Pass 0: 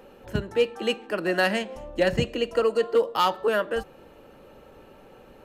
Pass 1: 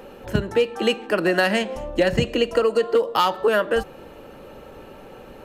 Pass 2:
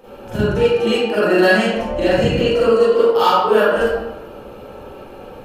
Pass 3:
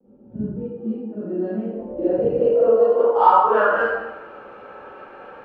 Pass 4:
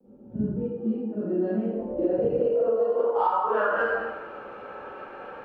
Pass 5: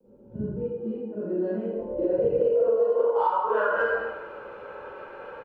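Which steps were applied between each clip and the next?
compression, threshold -23 dBFS, peak gain reduction 7.5 dB; trim +8 dB
peaking EQ 1.9 kHz -5.5 dB 0.33 oct; reverberation RT60 1.1 s, pre-delay 36 ms, DRR -12 dB; trim -6.5 dB
low-pass sweep 220 Hz -> 1.6 kHz, 1.20–4.09 s; vibrato 0.38 Hz 20 cents; RIAA curve recording; trim -4 dB
compression 12:1, threshold -20 dBFS, peak gain reduction 12.5 dB
comb 2 ms, depth 45%; trim -1.5 dB

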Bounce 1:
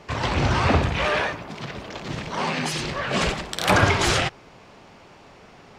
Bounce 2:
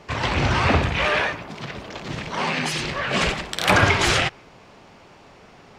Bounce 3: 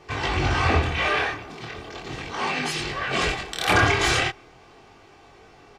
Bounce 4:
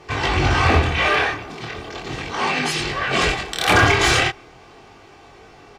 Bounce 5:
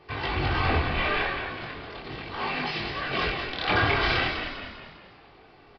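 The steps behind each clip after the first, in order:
dynamic bell 2.3 kHz, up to +4 dB, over -38 dBFS, Q 1
comb 2.6 ms, depth 49%; chorus 0.38 Hz, delay 20 ms, depth 7.1 ms
one-sided clip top -14.5 dBFS; trim +5 dB
frequency-shifting echo 199 ms, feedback 48%, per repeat -46 Hz, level -6.5 dB; resampled via 11.025 kHz; trim -9 dB

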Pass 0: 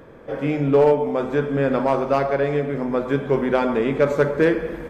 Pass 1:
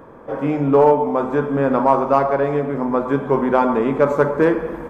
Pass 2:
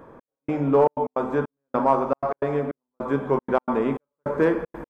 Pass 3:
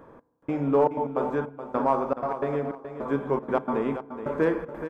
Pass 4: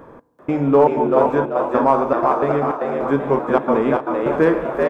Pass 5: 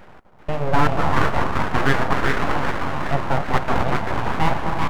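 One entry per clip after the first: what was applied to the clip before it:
graphic EQ 250/1000/2000/4000 Hz +4/+11/-3/-5 dB; trim -1 dB
trance gate "xx...xxxx.x.x" 155 bpm -60 dB; trim -4.5 dB
feedback delay 424 ms, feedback 21%, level -10.5 dB; FDN reverb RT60 1.2 s, low-frequency decay 1.35×, high-frequency decay 0.35×, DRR 20 dB; trim -3.5 dB
frequency-shifting echo 388 ms, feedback 36%, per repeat +89 Hz, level -4 dB; trim +8 dB
echo whose repeats swap between lows and highs 249 ms, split 880 Hz, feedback 56%, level -6 dB; full-wave rectifier; trim -1 dB

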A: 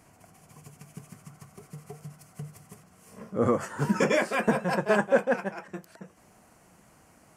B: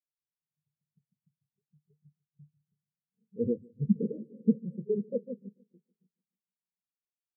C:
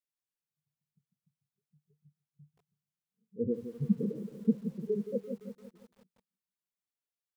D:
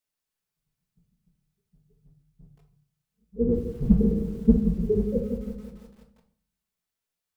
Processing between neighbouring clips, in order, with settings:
Chebyshev band-stop 470–7600 Hz, order 4; feedback echo behind a low-pass 146 ms, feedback 68%, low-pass 500 Hz, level -9.5 dB; spectral contrast expander 2.5:1
bit-crushed delay 171 ms, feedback 55%, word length 9-bit, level -10.5 dB; trim -2.5 dB
octave divider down 2 oct, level -4 dB; reverberation RT60 0.50 s, pre-delay 5 ms, DRR 3 dB; trim +5.5 dB

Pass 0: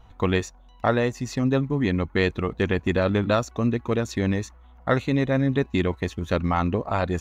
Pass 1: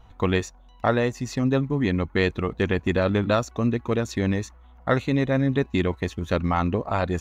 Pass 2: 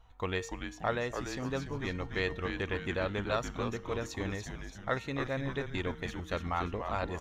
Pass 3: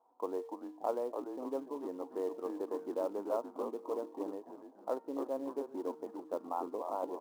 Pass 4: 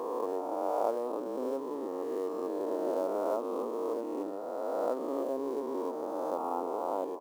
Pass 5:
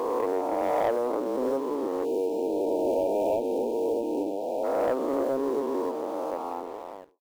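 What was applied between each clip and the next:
no audible change
peaking EQ 200 Hz -9 dB 2.2 oct; feedback comb 460 Hz, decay 0.66 s, mix 60%; frequency-shifting echo 290 ms, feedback 49%, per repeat -150 Hz, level -6.5 dB
elliptic band-pass 280–990 Hz, stop band 50 dB; in parallel at -5 dB: short-mantissa float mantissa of 2-bit; on the sum: trim -4 dB
reverse spectral sustain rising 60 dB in 2.86 s
fade out at the end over 1.65 s; waveshaping leveller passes 2; spectral selection erased 2.05–4.64 s, 960–2300 Hz

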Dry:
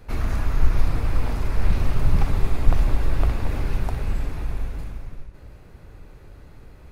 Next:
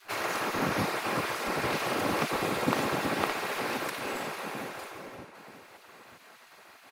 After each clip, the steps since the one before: comb filter that takes the minimum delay 3.7 ms; spectral gate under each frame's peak -25 dB weak; echo from a far wall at 160 m, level -13 dB; trim +7 dB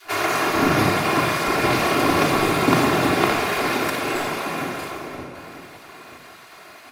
reverberation RT60 0.90 s, pre-delay 3 ms, DRR 0.5 dB; trim +7.5 dB

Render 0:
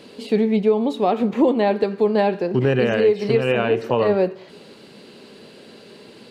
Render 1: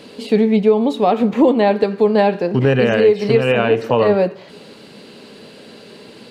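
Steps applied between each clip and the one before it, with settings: band-stop 370 Hz, Q 12; trim +4.5 dB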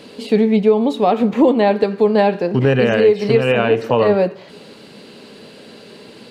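no audible change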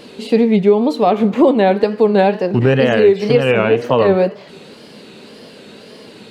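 wow and flutter 110 cents; trim +1.5 dB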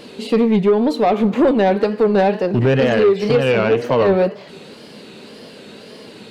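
saturation -7.5 dBFS, distortion -16 dB

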